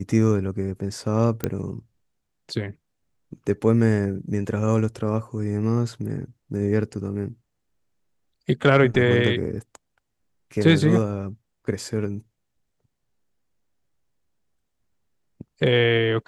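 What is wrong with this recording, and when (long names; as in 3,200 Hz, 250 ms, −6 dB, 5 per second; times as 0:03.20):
0:01.44: click −9 dBFS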